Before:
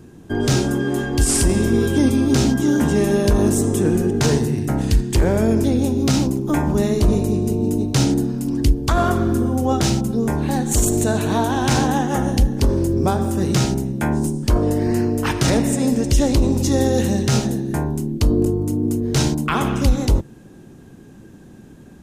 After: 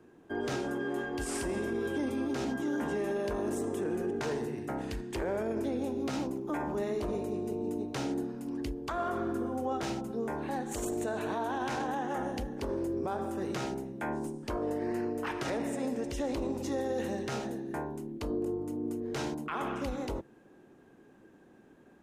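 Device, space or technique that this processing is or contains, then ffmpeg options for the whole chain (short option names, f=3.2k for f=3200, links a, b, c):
DJ mixer with the lows and highs turned down: -filter_complex "[0:a]acrossover=split=300 2700:gain=0.158 1 0.251[a][b][c];[a][b][c]amix=inputs=3:normalize=0,alimiter=limit=-16.5dB:level=0:latency=1:release=28,volume=-8.5dB"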